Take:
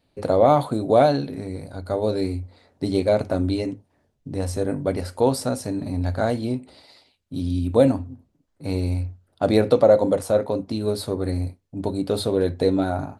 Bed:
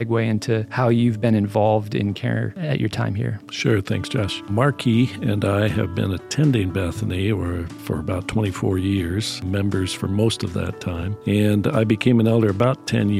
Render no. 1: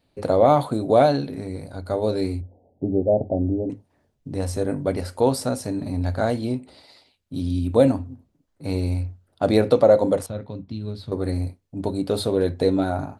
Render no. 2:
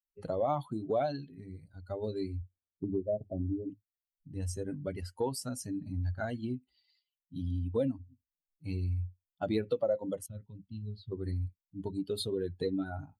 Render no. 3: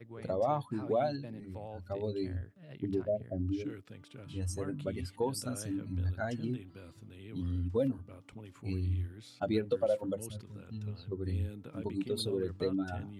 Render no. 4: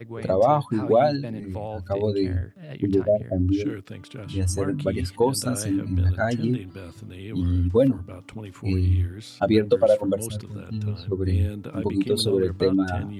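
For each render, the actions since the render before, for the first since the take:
2.41–3.70 s: steep low-pass 810 Hz 72 dB/octave; 10.26–11.12 s: FFT filter 150 Hz 0 dB, 390 Hz -13 dB, 610 Hz -16 dB, 3.5 kHz -6 dB, 9.2 kHz -24 dB
expander on every frequency bin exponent 2; compression 2.5:1, threshold -33 dBFS, peak gain reduction 13.5 dB
add bed -28 dB
trim +12 dB

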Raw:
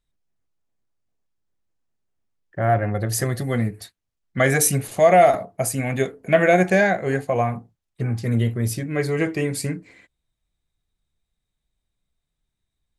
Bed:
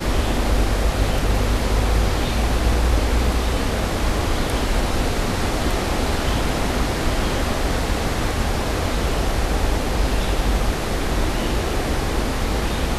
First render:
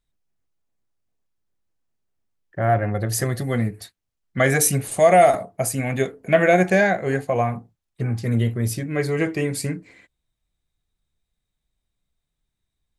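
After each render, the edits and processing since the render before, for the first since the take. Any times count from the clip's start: 4.87–5.49 s: peaking EQ 8.7 kHz +14.5 dB 0.38 oct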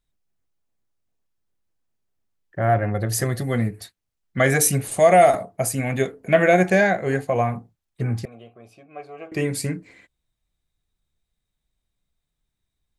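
8.25–9.32 s: vowel filter a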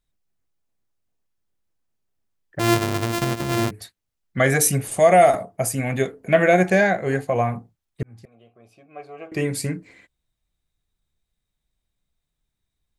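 2.59–3.71 s: sorted samples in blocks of 128 samples; 4.69–5.78 s: band-stop 4.1 kHz, Q 13; 8.03–9.11 s: fade in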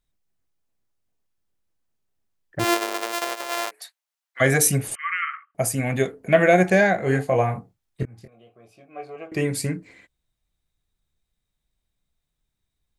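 2.63–4.40 s: high-pass 360 Hz -> 790 Hz 24 dB/octave; 4.95–5.55 s: brick-wall FIR band-pass 1.1–3.2 kHz; 6.96–9.16 s: doubling 23 ms -5 dB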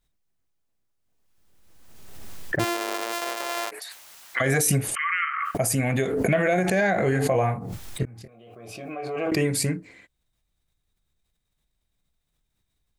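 peak limiter -13.5 dBFS, peak gain reduction 9 dB; swell ahead of each attack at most 31 dB/s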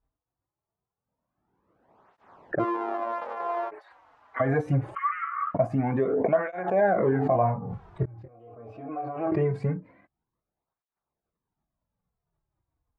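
resonant low-pass 1 kHz, resonance Q 1.9; cancelling through-zero flanger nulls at 0.23 Hz, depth 5.7 ms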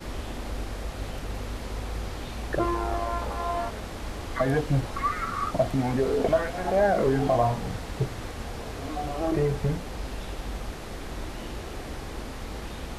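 add bed -14.5 dB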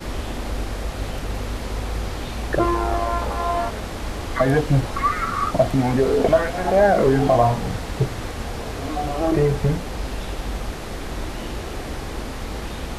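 trim +6.5 dB

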